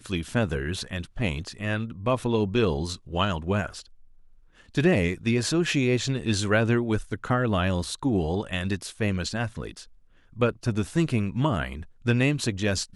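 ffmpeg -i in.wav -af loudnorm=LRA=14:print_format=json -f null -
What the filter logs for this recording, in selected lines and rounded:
"input_i" : "-26.4",
"input_tp" : "-8.6",
"input_lra" : "3.3",
"input_thresh" : "-36.8",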